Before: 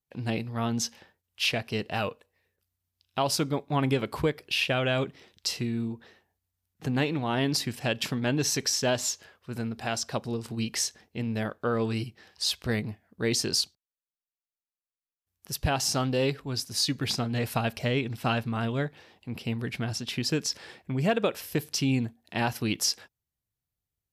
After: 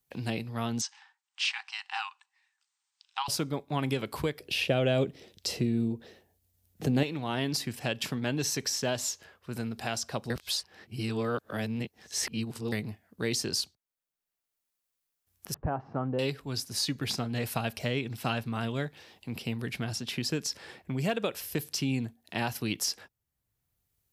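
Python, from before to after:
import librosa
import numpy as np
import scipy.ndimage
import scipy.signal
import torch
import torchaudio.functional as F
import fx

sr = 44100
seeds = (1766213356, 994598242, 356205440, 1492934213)

y = fx.brickwall_bandpass(x, sr, low_hz=760.0, high_hz=8900.0, at=(0.81, 3.28))
y = fx.low_shelf_res(y, sr, hz=770.0, db=7.0, q=1.5, at=(4.4, 7.03))
y = fx.lowpass(y, sr, hz=1300.0, slope=24, at=(15.54, 16.19))
y = fx.edit(y, sr, fx.reverse_span(start_s=10.3, length_s=2.42), tone=tone)
y = fx.high_shelf(y, sr, hz=7500.0, db=5.5)
y = fx.band_squash(y, sr, depth_pct=40)
y = y * 10.0 ** (-4.0 / 20.0)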